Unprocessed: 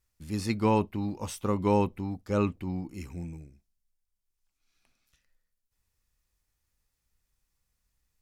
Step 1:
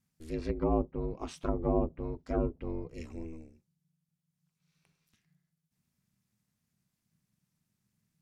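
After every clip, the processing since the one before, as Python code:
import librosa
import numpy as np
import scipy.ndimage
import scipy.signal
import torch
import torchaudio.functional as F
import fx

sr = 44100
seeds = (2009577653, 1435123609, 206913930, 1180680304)

y = x * np.sin(2.0 * np.pi * 160.0 * np.arange(len(x)) / sr)
y = fx.env_lowpass_down(y, sr, base_hz=660.0, full_db=-26.5)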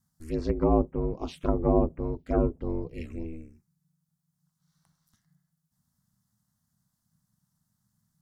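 y = fx.env_phaser(x, sr, low_hz=420.0, high_hz=4300.0, full_db=-29.5)
y = y * librosa.db_to_amplitude(6.0)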